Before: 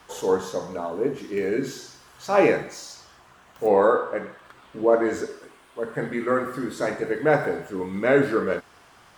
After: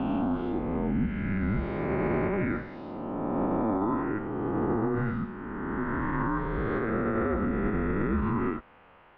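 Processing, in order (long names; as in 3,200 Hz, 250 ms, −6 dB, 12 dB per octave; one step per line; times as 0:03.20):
peak hold with a rise ahead of every peak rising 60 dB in 2.65 s
0:07.30–0:08.26: low-shelf EQ 250 Hz +9 dB
brickwall limiter −13 dBFS, peak gain reduction 12 dB
single-sideband voice off tune −210 Hz 170–3,000 Hz
level −6 dB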